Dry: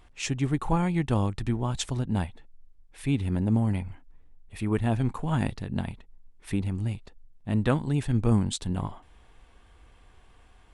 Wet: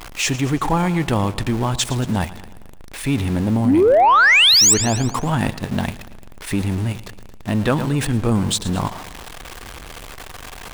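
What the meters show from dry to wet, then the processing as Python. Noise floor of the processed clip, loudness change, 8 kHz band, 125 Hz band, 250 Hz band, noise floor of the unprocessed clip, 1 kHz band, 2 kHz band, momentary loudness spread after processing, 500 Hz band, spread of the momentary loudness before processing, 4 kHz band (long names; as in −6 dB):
−37 dBFS, +11.5 dB, +22.0 dB, +5.0 dB, +7.5 dB, −56 dBFS, +16.0 dB, +21.5 dB, 25 LU, +13.5 dB, 10 LU, +22.5 dB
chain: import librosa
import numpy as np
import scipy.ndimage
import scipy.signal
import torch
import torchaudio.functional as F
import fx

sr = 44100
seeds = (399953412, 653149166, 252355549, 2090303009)

p1 = x + 0.5 * 10.0 ** (-36.0 / 20.0) * np.sign(x)
p2 = fx.spec_paint(p1, sr, seeds[0], shape='rise', start_s=3.65, length_s=1.09, low_hz=220.0, high_hz=8300.0, level_db=-17.0)
p3 = fx.low_shelf(p2, sr, hz=230.0, db=-7.5)
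p4 = p3 + fx.echo_feedback(p3, sr, ms=113, feedback_pct=53, wet_db=-16.0, dry=0)
p5 = 10.0 ** (-14.5 / 20.0) * np.tanh(p4 / 10.0 ** (-14.5 / 20.0))
p6 = fx.level_steps(p5, sr, step_db=18)
p7 = p5 + F.gain(torch.from_numpy(p6), 2.5).numpy()
y = F.gain(torch.from_numpy(p7), 6.0).numpy()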